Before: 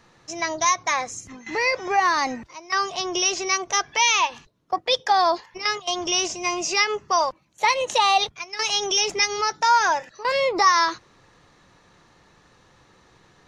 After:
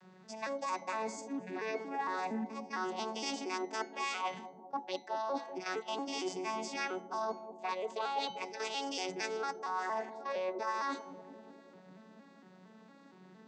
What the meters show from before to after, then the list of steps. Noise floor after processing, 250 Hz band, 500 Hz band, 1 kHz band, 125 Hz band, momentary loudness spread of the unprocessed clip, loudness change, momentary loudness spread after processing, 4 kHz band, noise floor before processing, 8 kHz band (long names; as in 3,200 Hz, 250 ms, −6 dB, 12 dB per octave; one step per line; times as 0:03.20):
−59 dBFS, −6.5 dB, −11.0 dB, −15.5 dB, can't be measured, 9 LU, −16.0 dB, 12 LU, −20.0 dB, −57 dBFS, −22.5 dB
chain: vocoder with an arpeggio as carrier minor triad, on F#3, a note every 230 ms
hum removal 169.3 Hz, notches 39
reversed playback
downward compressor 6 to 1, threshold −32 dBFS, peak gain reduction 18 dB
reversed playback
bucket-brigade delay 195 ms, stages 1,024, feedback 73%, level −10 dB
level −3 dB